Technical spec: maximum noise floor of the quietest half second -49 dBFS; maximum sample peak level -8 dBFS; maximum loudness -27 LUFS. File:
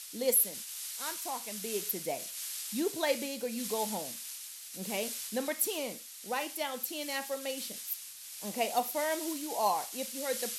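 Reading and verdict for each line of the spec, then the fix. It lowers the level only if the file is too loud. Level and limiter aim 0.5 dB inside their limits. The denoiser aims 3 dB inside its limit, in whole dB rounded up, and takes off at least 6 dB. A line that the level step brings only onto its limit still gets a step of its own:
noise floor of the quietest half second -46 dBFS: fail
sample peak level -15.0 dBFS: pass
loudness -34.0 LUFS: pass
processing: noise reduction 6 dB, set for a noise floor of -46 dBFS

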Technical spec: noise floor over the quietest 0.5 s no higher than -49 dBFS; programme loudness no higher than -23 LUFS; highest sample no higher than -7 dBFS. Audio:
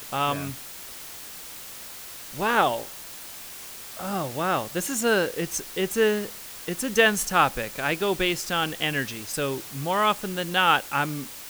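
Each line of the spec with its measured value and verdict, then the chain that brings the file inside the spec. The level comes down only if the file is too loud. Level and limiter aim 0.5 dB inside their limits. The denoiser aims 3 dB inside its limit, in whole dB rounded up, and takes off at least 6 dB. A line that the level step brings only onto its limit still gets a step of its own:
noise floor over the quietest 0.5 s -40 dBFS: fail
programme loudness -25.0 LUFS: pass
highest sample -6.0 dBFS: fail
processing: noise reduction 12 dB, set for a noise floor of -40 dBFS; peak limiter -7.5 dBFS

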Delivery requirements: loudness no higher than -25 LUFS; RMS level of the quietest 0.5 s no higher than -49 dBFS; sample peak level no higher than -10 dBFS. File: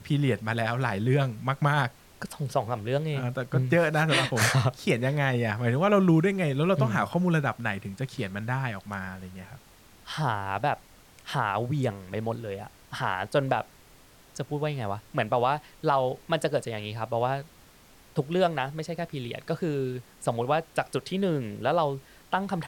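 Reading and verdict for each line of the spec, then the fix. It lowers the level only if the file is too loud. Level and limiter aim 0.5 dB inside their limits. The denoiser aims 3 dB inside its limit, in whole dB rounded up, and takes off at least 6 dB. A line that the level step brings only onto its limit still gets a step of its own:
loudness -27.5 LUFS: pass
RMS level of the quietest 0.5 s -55 dBFS: pass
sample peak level -11.5 dBFS: pass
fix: none needed

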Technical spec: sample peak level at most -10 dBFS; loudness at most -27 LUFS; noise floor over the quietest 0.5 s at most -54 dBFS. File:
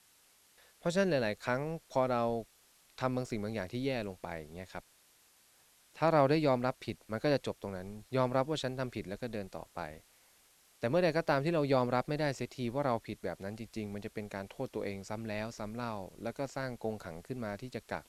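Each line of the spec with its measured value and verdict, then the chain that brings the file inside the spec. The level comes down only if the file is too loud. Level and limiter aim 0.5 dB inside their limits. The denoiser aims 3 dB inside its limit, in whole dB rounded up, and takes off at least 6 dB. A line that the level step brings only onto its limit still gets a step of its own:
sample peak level -13.0 dBFS: pass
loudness -35.0 LUFS: pass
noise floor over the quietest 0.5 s -66 dBFS: pass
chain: none needed

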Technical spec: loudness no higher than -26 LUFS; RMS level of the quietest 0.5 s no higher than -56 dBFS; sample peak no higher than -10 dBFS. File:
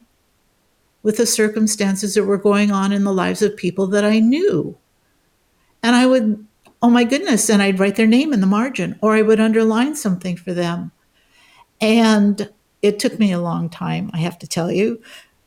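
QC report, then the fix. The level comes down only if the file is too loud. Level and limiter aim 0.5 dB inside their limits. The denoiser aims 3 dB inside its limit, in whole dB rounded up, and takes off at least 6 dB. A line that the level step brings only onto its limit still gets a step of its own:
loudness -17.0 LUFS: fail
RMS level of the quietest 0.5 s -62 dBFS: pass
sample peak -5.0 dBFS: fail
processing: trim -9.5 dB

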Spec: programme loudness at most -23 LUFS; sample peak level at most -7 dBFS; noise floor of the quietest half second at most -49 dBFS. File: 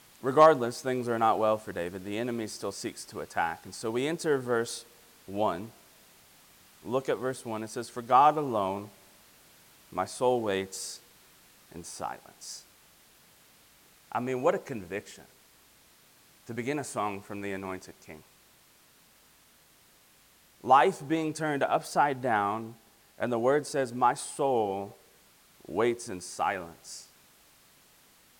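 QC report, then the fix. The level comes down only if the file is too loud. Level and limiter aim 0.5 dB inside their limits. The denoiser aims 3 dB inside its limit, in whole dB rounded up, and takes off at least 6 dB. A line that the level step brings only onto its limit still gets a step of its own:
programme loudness -29.5 LUFS: pass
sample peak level -6.0 dBFS: fail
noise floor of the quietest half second -61 dBFS: pass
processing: peak limiter -7.5 dBFS

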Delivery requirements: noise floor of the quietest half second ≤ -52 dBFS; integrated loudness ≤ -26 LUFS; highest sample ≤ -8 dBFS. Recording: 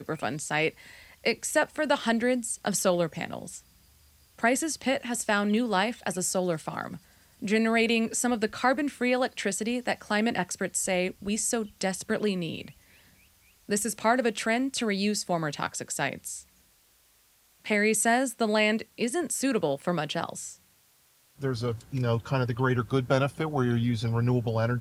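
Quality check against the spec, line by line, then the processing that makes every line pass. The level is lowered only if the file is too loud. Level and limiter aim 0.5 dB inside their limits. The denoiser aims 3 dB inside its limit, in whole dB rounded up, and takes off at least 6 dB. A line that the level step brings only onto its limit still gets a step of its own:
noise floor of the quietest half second -63 dBFS: pass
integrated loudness -27.5 LUFS: pass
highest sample -10.0 dBFS: pass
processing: none needed

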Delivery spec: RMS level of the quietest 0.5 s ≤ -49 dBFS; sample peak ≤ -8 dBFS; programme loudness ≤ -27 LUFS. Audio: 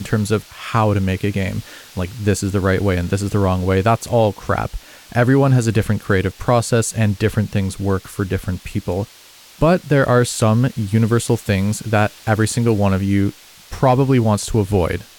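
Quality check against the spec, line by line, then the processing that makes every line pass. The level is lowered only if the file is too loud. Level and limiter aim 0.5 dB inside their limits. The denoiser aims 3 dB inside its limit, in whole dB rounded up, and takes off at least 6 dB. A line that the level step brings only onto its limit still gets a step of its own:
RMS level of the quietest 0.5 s -44 dBFS: fail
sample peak -4.5 dBFS: fail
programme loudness -18.0 LUFS: fail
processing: trim -9.5 dB

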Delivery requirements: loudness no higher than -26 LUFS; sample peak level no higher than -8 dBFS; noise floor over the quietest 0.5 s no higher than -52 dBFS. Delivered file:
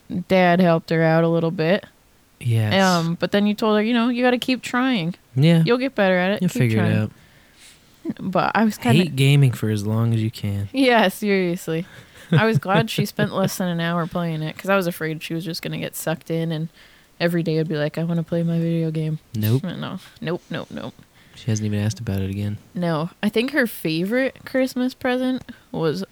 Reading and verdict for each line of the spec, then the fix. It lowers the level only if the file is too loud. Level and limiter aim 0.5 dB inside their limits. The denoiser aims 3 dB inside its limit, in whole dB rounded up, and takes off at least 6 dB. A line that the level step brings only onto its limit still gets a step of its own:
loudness -21.0 LUFS: fail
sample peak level -6.0 dBFS: fail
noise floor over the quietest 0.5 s -55 dBFS: pass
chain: trim -5.5 dB

